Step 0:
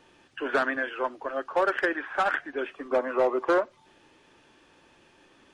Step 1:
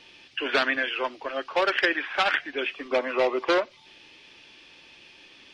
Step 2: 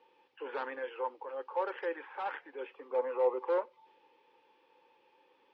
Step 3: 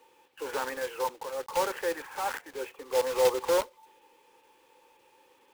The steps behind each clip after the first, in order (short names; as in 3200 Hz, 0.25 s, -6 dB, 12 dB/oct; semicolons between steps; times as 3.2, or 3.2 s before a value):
band shelf 3400 Hz +13.5 dB
transient shaper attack -6 dB, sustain +1 dB; double band-pass 660 Hz, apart 0.79 oct
block floating point 3-bit; gain +5 dB